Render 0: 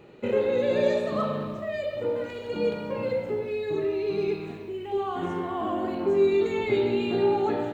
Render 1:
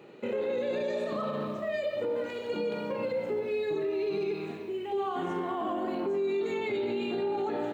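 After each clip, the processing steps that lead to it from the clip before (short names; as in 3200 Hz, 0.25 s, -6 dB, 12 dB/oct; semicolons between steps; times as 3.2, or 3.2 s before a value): HPF 180 Hz 12 dB/oct; limiter -24 dBFS, peak gain reduction 11 dB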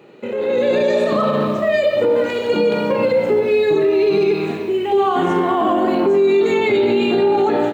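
AGC gain up to 10 dB; gain +5.5 dB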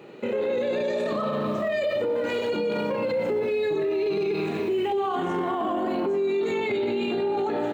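limiter -19.5 dBFS, peak gain reduction 11 dB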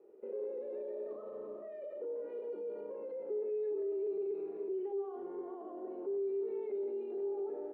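ladder band-pass 450 Hz, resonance 65%; gain -9 dB; Opus 64 kbps 48000 Hz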